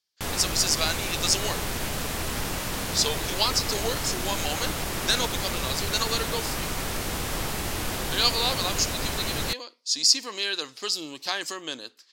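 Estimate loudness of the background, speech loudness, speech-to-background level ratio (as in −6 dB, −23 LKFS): −29.5 LKFS, −26.5 LKFS, 3.0 dB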